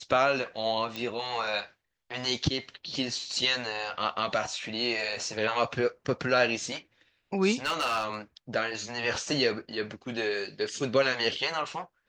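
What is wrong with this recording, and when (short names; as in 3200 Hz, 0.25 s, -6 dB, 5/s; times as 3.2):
0.96 pop -20 dBFS
7.64–8.16 clipped -23.5 dBFS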